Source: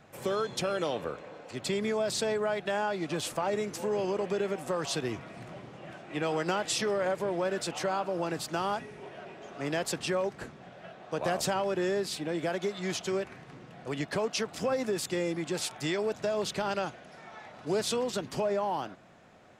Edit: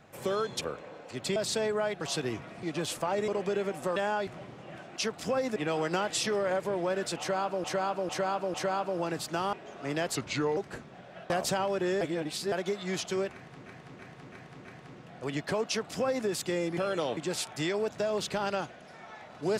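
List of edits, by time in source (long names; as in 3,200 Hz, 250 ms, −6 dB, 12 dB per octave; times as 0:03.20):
0:00.61–0:01.01: move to 0:15.41
0:01.76–0:02.02: remove
0:02.67–0:02.98: swap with 0:04.80–0:05.42
0:03.63–0:04.12: remove
0:07.74–0:08.19: repeat, 4 plays
0:08.73–0:09.29: remove
0:09.91–0:10.25: play speed 81%
0:10.98–0:11.26: remove
0:11.97–0:12.48: reverse
0:13.29–0:13.62: repeat, 5 plays
0:14.31–0:14.91: duplicate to 0:06.11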